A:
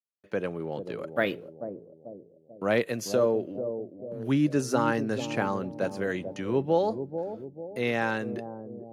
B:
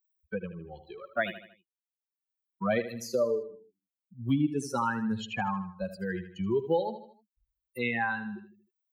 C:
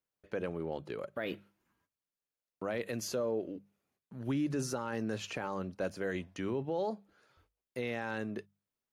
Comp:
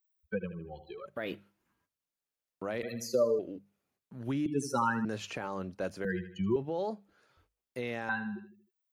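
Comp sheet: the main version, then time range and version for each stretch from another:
B
1.06–2.83 s: from C
3.39–4.46 s: from C
5.05–6.05 s: from C
6.56–8.09 s: from C
not used: A

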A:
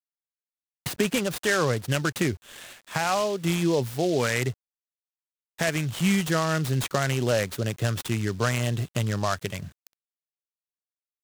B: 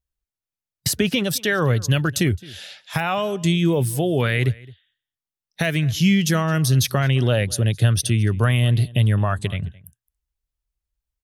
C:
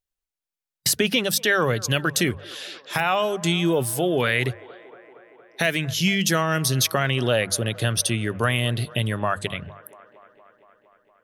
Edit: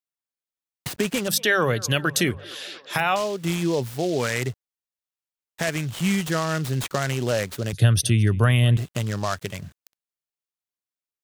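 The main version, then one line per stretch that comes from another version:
A
1.28–3.16 s: from C
7.73–8.77 s: from B

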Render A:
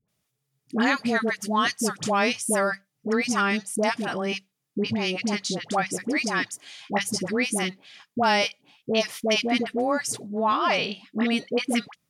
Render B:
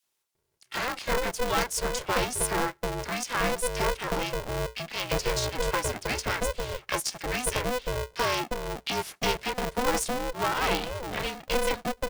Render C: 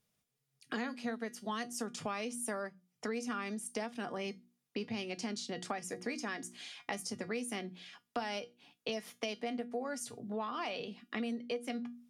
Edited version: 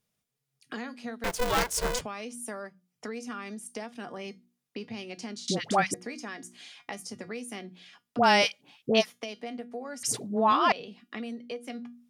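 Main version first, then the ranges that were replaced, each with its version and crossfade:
C
1.24–2.01 s: from B
5.48–5.94 s: from A
8.17–9.03 s: from A, crossfade 0.06 s
10.03–10.72 s: from A

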